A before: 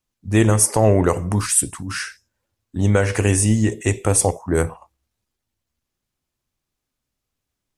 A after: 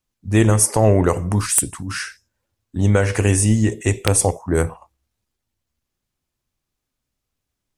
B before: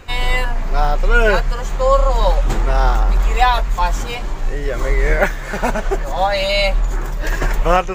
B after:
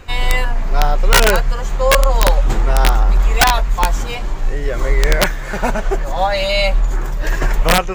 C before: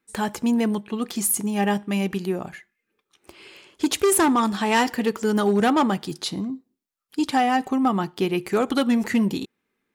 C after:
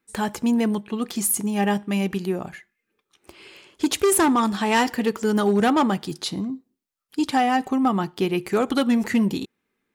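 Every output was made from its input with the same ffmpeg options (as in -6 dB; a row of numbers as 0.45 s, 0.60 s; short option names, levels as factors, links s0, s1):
-af "lowshelf=f=120:g=2.5,aeval=exprs='(mod(1.41*val(0)+1,2)-1)/1.41':c=same"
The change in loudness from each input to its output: +0.5 LU, +1.5 LU, +0.5 LU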